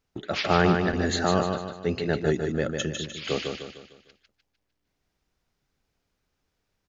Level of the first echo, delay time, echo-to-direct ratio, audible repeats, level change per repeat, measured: -5.0 dB, 151 ms, -4.0 dB, 5, -7.5 dB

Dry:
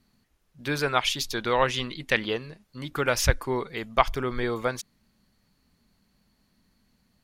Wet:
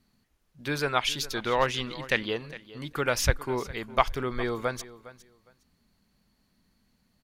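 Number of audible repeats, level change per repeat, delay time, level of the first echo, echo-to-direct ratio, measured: 2, -14.5 dB, 409 ms, -17.5 dB, -17.5 dB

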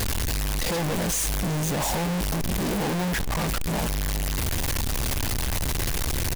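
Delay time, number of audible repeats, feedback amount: 371 ms, 2, 33%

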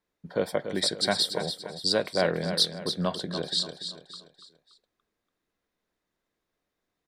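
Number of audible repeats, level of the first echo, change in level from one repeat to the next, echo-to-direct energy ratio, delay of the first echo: 4, -9.0 dB, -8.0 dB, -8.0 dB, 287 ms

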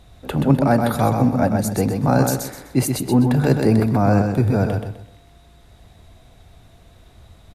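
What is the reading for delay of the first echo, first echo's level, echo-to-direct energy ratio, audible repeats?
127 ms, -5.0 dB, -4.5 dB, 3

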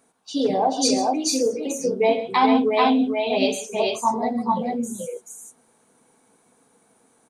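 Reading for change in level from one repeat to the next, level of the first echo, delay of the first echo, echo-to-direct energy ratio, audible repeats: no regular repeats, -18.0 dB, 85 ms, -1.5 dB, 3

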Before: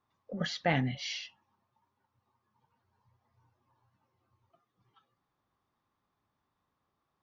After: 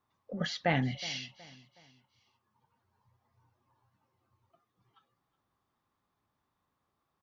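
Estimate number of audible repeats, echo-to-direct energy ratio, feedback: 2, -18.5 dB, 39%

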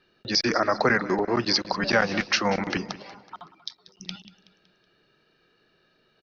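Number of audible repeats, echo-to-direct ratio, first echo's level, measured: 3, -16.0 dB, -17.0 dB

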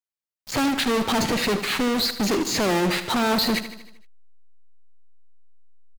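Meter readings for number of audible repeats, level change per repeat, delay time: 5, -5.0 dB, 77 ms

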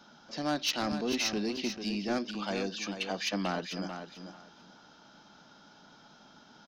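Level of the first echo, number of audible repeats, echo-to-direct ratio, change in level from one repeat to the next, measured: -8.5 dB, 2, -8.5 dB, -14.5 dB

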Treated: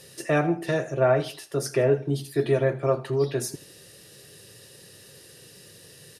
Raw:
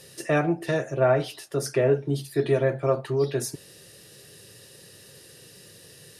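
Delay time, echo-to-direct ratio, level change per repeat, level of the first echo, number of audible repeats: 81 ms, -17.5 dB, -8.0 dB, -18.0 dB, 2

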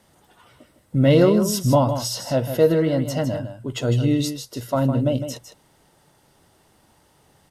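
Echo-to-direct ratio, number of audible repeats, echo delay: -9.0 dB, 1, 156 ms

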